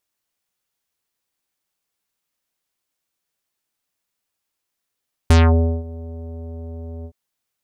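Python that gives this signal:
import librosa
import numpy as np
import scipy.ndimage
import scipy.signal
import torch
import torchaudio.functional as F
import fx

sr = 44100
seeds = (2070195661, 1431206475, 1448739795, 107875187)

y = fx.sub_voice(sr, note=40, wave='square', cutoff_hz=600.0, q=1.4, env_oct=4.5, env_s=0.23, attack_ms=2.6, decay_s=0.53, sustain_db=-22.5, release_s=0.07, note_s=1.75, slope=24)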